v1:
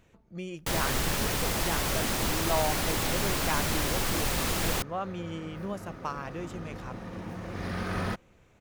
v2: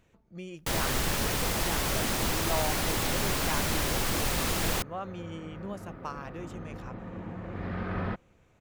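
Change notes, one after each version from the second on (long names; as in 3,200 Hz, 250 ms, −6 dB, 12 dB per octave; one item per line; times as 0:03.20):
speech −3.5 dB
second sound: add high-frequency loss of the air 410 metres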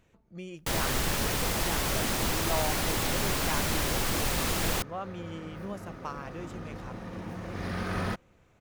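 second sound: remove high-frequency loss of the air 410 metres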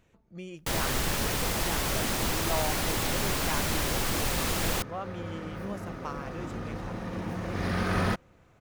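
second sound +4.5 dB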